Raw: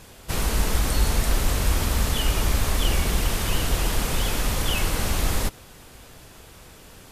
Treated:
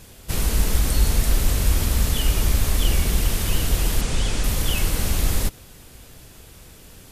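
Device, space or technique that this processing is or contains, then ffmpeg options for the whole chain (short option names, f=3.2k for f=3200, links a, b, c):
smiley-face EQ: -filter_complex "[0:a]asettb=1/sr,asplit=3[a][b][c];[a]atrim=end=4.014[d];[b]atrim=start=4.01:end=4.44,asetpts=PTS-STARTPTS,afade=t=in:d=0.004:c=qsin,afade=t=out:st=0.426:d=0.004:c=qsin,lowpass=f=8.9k:w=0.5412,lowpass=f=8.9k:w=1.3066[e];[c]atrim=start=4.436[f];[d][e]acrossfade=d=0.004:c1=hsin:c2=qsin[g];[g][f]acrossfade=d=0.004:c1=qsin:c2=hsin,lowshelf=f=170:g=3.5,equalizer=f=1k:t=o:w=1.7:g=-4.5,highshelf=f=9.8k:g=5.5"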